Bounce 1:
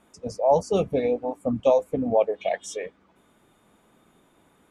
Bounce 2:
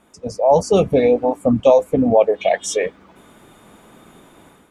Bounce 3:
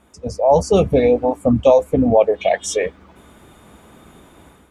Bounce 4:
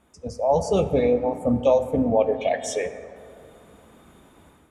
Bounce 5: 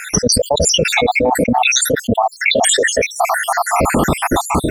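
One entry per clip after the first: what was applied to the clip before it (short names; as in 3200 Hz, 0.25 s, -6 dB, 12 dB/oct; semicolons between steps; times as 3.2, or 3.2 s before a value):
AGC gain up to 9.5 dB; in parallel at 0 dB: limiter -14 dBFS, peak gain reduction 11.5 dB; on the sum: gain -1.5 dB
bell 66 Hz +12.5 dB 0.94 oct
plate-style reverb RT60 2.5 s, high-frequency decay 0.35×, pre-delay 0 ms, DRR 9.5 dB; gain -7 dB
random spectral dropouts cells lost 74%; fast leveller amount 100%; gain +4.5 dB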